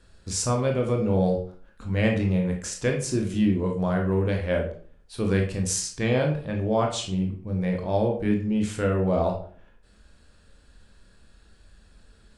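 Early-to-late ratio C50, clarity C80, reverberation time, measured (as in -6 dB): 7.0 dB, 12.0 dB, 0.45 s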